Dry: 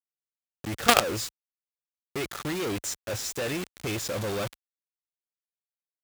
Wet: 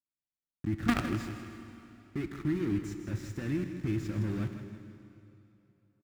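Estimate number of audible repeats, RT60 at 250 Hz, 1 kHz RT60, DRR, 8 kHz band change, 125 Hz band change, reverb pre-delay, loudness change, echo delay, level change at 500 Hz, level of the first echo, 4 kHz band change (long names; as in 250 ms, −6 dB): 3, 2.8 s, 2.9 s, 5.5 dB, −20.5 dB, +3.5 dB, 7 ms, −5.5 dB, 159 ms, −10.0 dB, −11.0 dB, −17.5 dB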